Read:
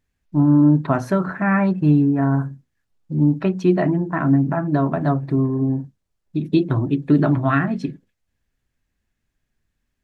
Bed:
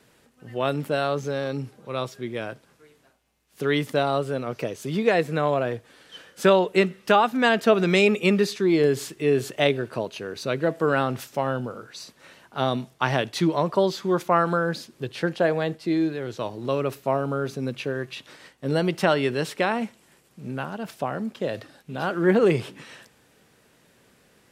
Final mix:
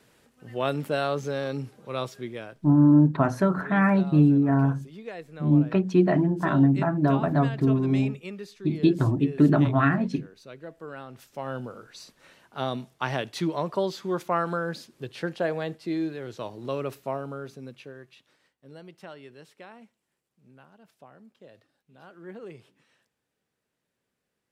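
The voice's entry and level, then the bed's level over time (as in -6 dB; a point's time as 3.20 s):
2.30 s, -3.0 dB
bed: 2.19 s -2 dB
2.88 s -18 dB
11.06 s -18 dB
11.57 s -5.5 dB
16.93 s -5.5 dB
18.69 s -23 dB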